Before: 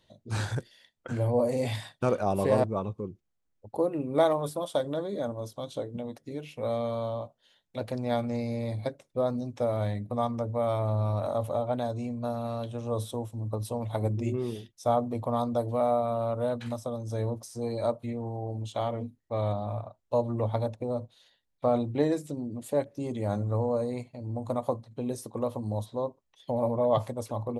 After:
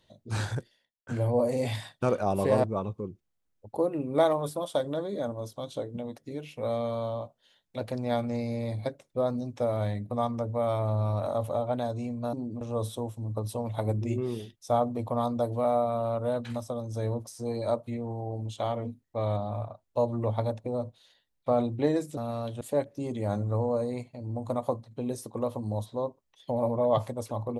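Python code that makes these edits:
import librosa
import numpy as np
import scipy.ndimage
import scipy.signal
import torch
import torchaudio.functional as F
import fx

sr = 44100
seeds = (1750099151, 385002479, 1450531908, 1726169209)

y = fx.studio_fade_out(x, sr, start_s=0.44, length_s=0.63)
y = fx.edit(y, sr, fx.swap(start_s=12.33, length_s=0.44, other_s=22.33, other_length_s=0.28), tone=tone)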